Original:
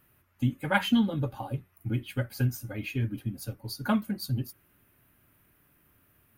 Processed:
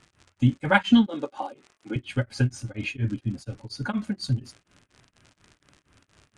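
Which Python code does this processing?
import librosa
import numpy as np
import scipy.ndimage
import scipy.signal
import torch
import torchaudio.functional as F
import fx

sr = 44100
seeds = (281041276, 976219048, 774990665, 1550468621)

y = fx.highpass(x, sr, hz=290.0, slope=24, at=(1.06, 1.96))
y = fx.dmg_crackle(y, sr, seeds[0], per_s=89.0, level_db=-42.0)
y = scipy.signal.sosfilt(scipy.signal.butter(6, 8500.0, 'lowpass', fs=sr, output='sos'), y)
y = y * np.abs(np.cos(np.pi * 4.2 * np.arange(len(y)) / sr))
y = y * librosa.db_to_amplitude(7.0)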